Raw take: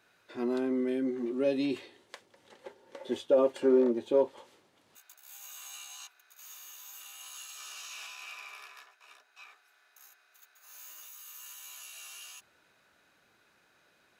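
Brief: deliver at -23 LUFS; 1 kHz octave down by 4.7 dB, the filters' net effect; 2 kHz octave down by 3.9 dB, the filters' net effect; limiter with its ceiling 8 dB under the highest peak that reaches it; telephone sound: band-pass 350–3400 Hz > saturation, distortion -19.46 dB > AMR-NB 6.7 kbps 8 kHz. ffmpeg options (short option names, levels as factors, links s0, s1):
-af "equalizer=f=1000:t=o:g=-5,equalizer=f=2000:t=o:g=-3,alimiter=limit=0.0668:level=0:latency=1,highpass=350,lowpass=3400,asoftclip=threshold=0.0422,volume=6.68" -ar 8000 -c:a libopencore_amrnb -b:a 6700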